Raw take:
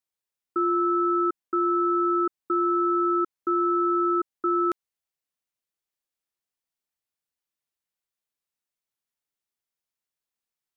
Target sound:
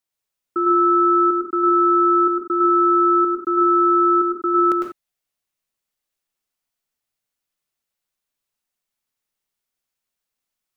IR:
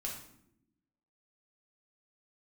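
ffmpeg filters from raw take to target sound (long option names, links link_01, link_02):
-filter_complex "[0:a]asplit=2[link_01][link_02];[1:a]atrim=start_sample=2205,atrim=end_sample=4410,adelay=103[link_03];[link_02][link_03]afir=irnorm=-1:irlink=0,volume=0dB[link_04];[link_01][link_04]amix=inputs=2:normalize=0,volume=3.5dB"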